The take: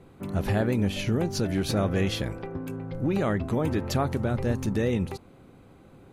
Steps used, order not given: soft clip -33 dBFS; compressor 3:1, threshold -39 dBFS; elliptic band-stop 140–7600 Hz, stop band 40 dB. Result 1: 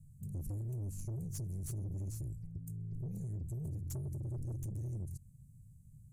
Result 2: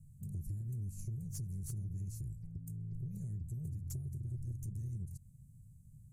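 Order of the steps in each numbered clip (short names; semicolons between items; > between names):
elliptic band-stop > soft clip > compressor; elliptic band-stop > compressor > soft clip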